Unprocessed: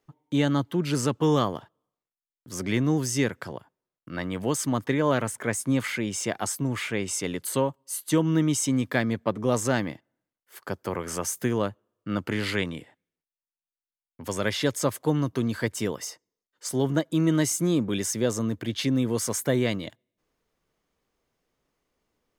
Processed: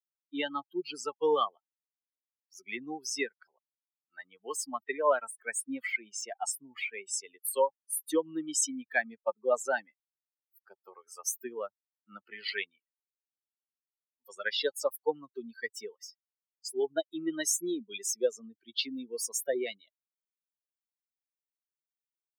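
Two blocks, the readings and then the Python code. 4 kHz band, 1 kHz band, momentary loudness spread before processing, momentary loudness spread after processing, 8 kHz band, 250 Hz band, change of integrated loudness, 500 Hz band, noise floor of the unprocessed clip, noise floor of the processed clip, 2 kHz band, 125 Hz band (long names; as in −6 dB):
−4.0 dB, −3.5 dB, 11 LU, 14 LU, −3.5 dB, −15.0 dB, −6.5 dB, −4.5 dB, below −85 dBFS, below −85 dBFS, −3.5 dB, below −35 dB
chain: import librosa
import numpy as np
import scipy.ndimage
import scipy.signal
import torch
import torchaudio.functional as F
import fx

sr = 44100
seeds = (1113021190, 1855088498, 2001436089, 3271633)

y = fx.bin_expand(x, sr, power=3.0)
y = scipy.signal.sosfilt(scipy.signal.butter(4, 410.0, 'highpass', fs=sr, output='sos'), y)
y = fx.notch(y, sr, hz=830.0, q=15.0)
y = y * librosa.db_to_amplitude(5.0)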